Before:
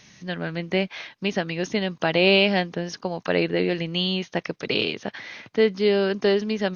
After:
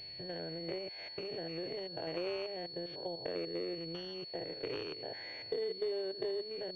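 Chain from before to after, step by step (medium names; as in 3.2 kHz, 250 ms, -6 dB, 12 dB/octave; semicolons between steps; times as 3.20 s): spectrogram pixelated in time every 100 ms; dynamic bell 800 Hz, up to -4 dB, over -33 dBFS, Q 0.75; compression 4:1, threshold -37 dBFS, peak gain reduction 18 dB; static phaser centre 500 Hz, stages 4; class-D stage that switches slowly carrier 4.4 kHz; trim +2.5 dB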